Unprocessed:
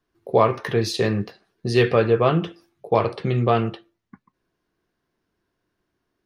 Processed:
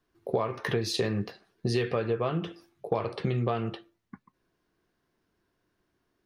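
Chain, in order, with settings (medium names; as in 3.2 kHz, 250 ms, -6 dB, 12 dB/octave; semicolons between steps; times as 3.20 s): compression 12:1, threshold -24 dBFS, peak gain reduction 14 dB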